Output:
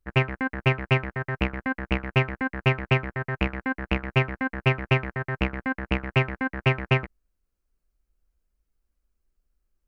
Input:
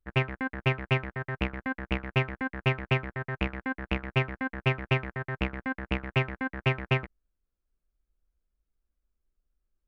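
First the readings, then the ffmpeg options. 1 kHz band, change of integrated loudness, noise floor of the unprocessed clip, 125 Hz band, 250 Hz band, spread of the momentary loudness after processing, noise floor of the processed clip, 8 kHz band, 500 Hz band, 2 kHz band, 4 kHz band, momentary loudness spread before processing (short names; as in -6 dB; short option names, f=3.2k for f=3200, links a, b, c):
+4.5 dB, +4.5 dB, under -85 dBFS, +4.5 dB, +4.5 dB, 5 LU, -81 dBFS, n/a, +4.5 dB, +4.5 dB, +3.5 dB, 5 LU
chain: -af "equalizer=f=3.5k:w=6.8:g=-6.5,volume=4.5dB"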